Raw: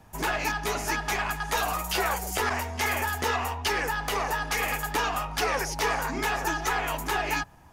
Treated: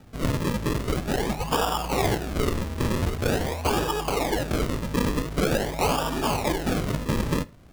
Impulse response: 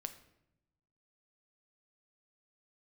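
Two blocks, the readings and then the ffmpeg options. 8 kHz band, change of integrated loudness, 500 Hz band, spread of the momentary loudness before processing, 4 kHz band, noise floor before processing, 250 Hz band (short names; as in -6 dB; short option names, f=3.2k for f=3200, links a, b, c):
-2.0 dB, +1.5 dB, +5.5 dB, 2 LU, 0.0 dB, -52 dBFS, +11.0 dB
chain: -filter_complex "[0:a]acrusher=samples=41:mix=1:aa=0.000001:lfo=1:lforange=41:lforate=0.45,asplit=2[a][b];[1:a]atrim=start_sample=2205,afade=t=out:st=0.17:d=0.01,atrim=end_sample=7938[c];[b][c]afir=irnorm=-1:irlink=0,volume=-4dB[d];[a][d]amix=inputs=2:normalize=0"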